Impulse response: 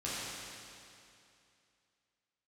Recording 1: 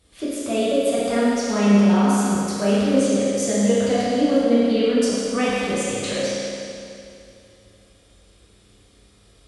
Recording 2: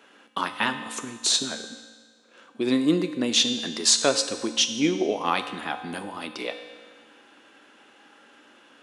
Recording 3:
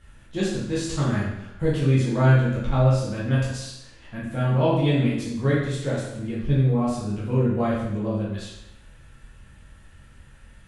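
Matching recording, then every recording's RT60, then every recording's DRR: 1; 2.6, 1.6, 0.85 s; -9.5, 8.0, -8.0 dB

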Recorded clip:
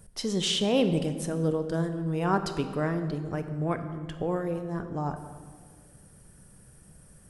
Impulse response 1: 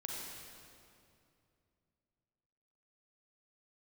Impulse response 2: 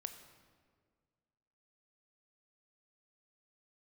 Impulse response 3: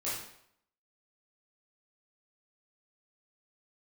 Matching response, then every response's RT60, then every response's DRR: 2; 2.6, 1.8, 0.70 s; -2.5, 8.0, -10.0 dB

